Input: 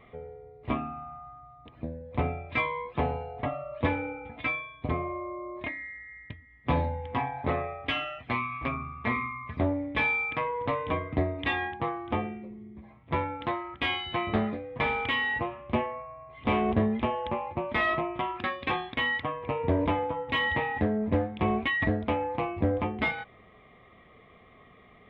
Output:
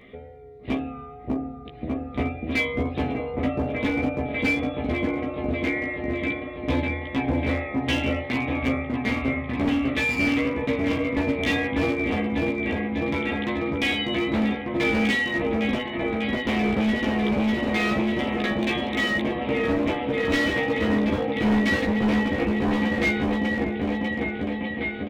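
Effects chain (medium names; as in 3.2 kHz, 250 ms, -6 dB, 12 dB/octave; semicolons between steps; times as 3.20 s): graphic EQ 125/250/500/1000/2000/4000 Hz -4/+8/+4/-11/+4/+7 dB; in parallel at -3 dB: compression 6:1, threshold -33 dBFS, peak gain reduction 15.5 dB; on the sum: wow and flutter 25 cents; on a send: delay with an opening low-pass 597 ms, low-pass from 750 Hz, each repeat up 1 oct, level 0 dB; on the sum: hard clipper -17 dBFS, distortion -13 dB; doubling 15 ms -3 dB; trim -2.5 dB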